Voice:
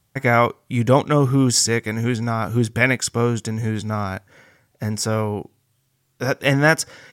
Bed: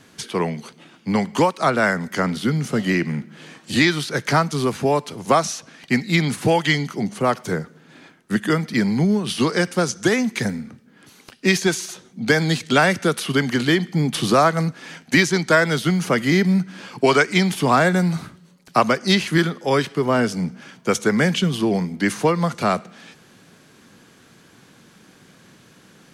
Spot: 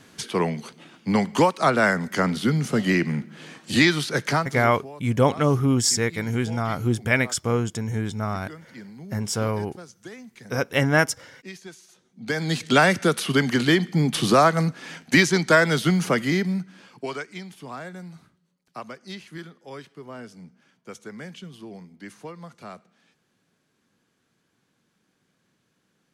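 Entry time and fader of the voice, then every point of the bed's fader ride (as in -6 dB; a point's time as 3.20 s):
4.30 s, -3.5 dB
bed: 4.23 s -1 dB
4.93 s -22.5 dB
11.83 s -22.5 dB
12.65 s -1 dB
16.02 s -1 dB
17.45 s -20.5 dB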